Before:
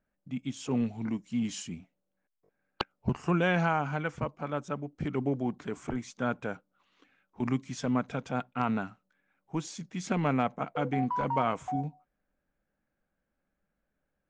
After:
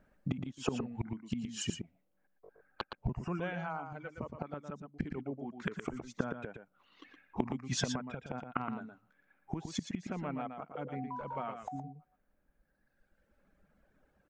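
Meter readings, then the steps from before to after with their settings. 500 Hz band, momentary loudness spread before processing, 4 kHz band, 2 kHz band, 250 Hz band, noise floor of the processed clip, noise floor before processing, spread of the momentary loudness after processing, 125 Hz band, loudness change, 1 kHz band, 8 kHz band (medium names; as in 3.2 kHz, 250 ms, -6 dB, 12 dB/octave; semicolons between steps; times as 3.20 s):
-8.0 dB, 11 LU, -0.5 dB, -8.5 dB, -7.5 dB, -77 dBFS, -83 dBFS, 9 LU, -7.0 dB, -7.5 dB, -9.0 dB, 0.0 dB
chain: reverb removal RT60 1.6 s; treble shelf 3.4 kHz -10.5 dB; inverted gate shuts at -35 dBFS, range -24 dB; delay 117 ms -7 dB; trim +14.5 dB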